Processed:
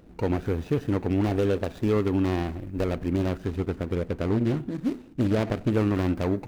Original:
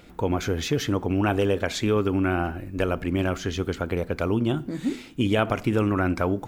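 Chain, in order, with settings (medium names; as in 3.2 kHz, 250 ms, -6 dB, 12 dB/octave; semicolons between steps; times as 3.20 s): median filter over 41 samples; 3.48–5.71 s: loudspeaker Doppler distortion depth 0.39 ms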